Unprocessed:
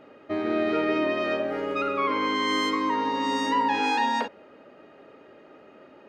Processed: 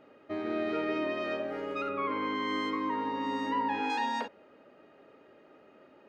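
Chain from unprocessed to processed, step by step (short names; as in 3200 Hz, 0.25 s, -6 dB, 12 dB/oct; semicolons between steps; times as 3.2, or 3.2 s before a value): 1.89–3.9 tone controls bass +4 dB, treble -13 dB; gain -7 dB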